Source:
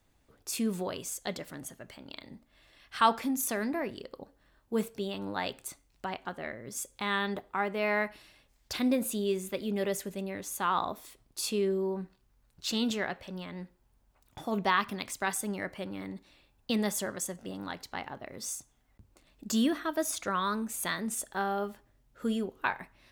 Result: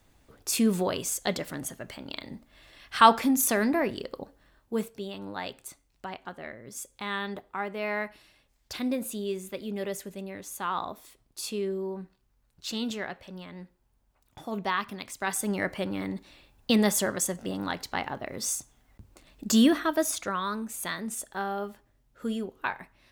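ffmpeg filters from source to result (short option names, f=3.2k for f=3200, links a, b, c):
-af "volume=16dB,afade=t=out:st=4.13:d=0.79:silence=0.354813,afade=t=in:st=15.16:d=0.46:silence=0.354813,afade=t=out:st=19.75:d=0.63:silence=0.421697"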